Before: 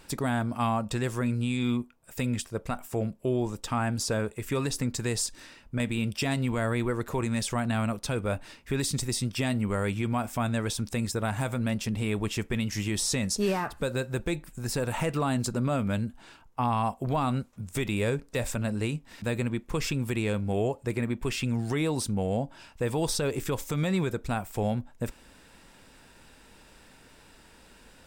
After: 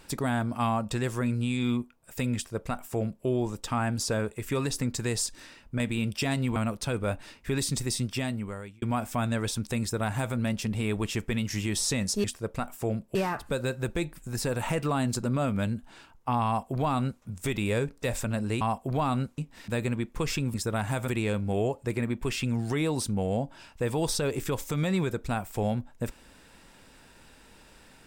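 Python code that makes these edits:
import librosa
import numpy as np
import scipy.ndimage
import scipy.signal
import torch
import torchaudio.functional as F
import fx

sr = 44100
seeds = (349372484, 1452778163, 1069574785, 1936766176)

y = fx.edit(x, sr, fx.duplicate(start_s=2.35, length_s=0.91, to_s=13.46),
    fx.cut(start_s=6.56, length_s=1.22),
    fx.fade_out_span(start_s=9.25, length_s=0.79),
    fx.duplicate(start_s=11.03, length_s=0.54, to_s=20.08),
    fx.duplicate(start_s=16.77, length_s=0.77, to_s=18.92), tone=tone)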